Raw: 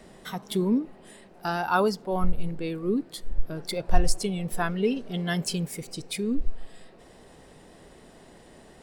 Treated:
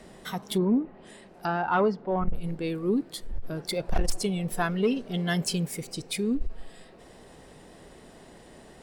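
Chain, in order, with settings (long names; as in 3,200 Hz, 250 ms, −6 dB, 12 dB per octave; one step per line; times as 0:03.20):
harmonic generator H 5 −11 dB, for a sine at −6 dBFS
0:00.57–0:02.35: treble cut that deepens with the level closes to 2,100 Hz, closed at −20 dBFS
level −6.5 dB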